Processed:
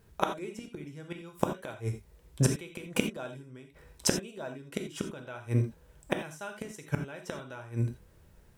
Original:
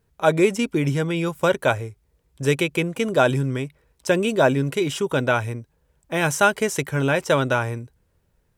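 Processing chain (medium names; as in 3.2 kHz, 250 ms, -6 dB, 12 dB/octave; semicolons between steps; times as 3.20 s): inverted gate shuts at -17 dBFS, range -30 dB; gated-style reverb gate 110 ms flat, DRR 5 dB; trim +6 dB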